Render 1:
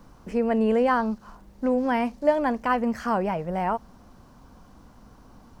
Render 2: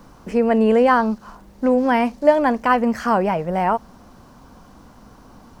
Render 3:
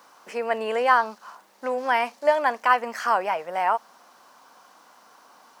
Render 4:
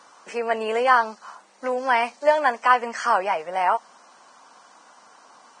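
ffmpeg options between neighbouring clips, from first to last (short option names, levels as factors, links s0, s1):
-af "lowshelf=f=120:g=-5.5,volume=2.24"
-af "highpass=800"
-af "volume=1.19" -ar 22050 -c:a libvorbis -b:a 16k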